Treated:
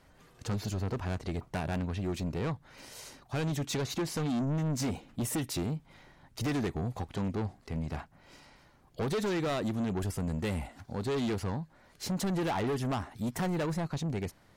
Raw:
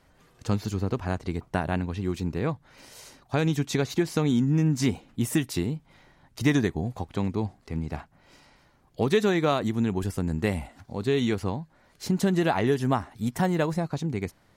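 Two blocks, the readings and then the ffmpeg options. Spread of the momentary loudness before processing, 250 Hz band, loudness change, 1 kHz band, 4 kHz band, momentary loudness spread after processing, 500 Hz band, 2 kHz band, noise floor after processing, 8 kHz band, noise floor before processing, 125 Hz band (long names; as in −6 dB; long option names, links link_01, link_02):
10 LU, −7.0 dB, −6.5 dB, −6.0 dB, −4.5 dB, 9 LU, −7.5 dB, −7.5 dB, −62 dBFS, −2.0 dB, −62 dBFS, −5.5 dB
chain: -af "asoftclip=type=tanh:threshold=-28dB"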